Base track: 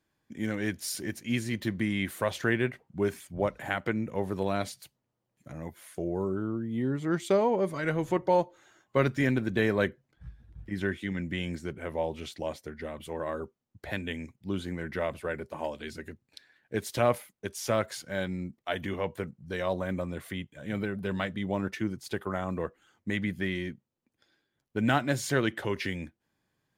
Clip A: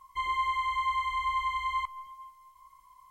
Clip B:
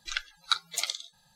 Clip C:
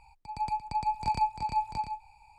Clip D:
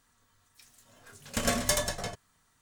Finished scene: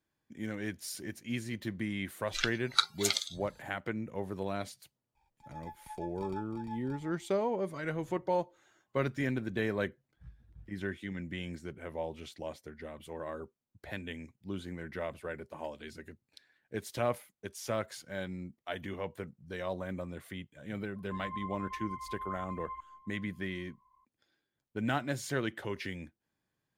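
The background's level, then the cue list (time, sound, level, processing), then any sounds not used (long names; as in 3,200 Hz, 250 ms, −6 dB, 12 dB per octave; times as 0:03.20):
base track −6.5 dB
0:02.27: mix in B
0:05.15: mix in C −16 dB + windowed peak hold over 5 samples
0:20.95: mix in A −9 dB + Bessel low-pass filter 1,100 Hz, order 4
not used: D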